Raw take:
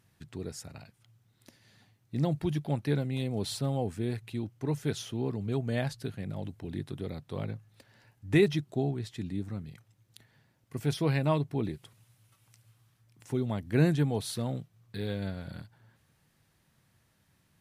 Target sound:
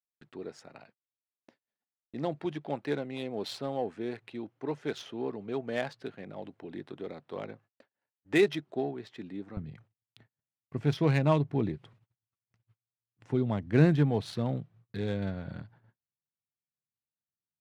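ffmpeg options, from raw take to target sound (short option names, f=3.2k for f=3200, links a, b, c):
-af "asetnsamples=n=441:p=0,asendcmd='9.57 highpass f 84',highpass=340,agate=range=-38dB:threshold=-59dB:ratio=16:detection=peak,adynamicsmooth=sensitivity=5.5:basefreq=2.4k,volume=2.5dB"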